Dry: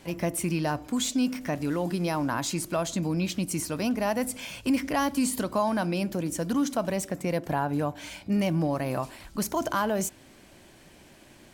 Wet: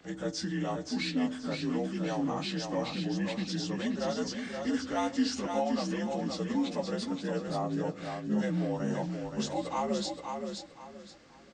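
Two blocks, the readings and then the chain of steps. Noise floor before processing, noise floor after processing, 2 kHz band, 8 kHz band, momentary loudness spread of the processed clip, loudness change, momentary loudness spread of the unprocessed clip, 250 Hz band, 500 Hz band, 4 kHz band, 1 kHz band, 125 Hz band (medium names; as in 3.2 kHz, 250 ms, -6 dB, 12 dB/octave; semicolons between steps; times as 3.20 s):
-54 dBFS, -51 dBFS, -5.5 dB, -10.5 dB, 5 LU, -4.5 dB, 4 LU, -3.5 dB, -4.0 dB, -1.0 dB, -5.5 dB, -5.5 dB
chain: frequency axis rescaled in octaves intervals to 84%; feedback delay 523 ms, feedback 28%, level -5.5 dB; trim -4 dB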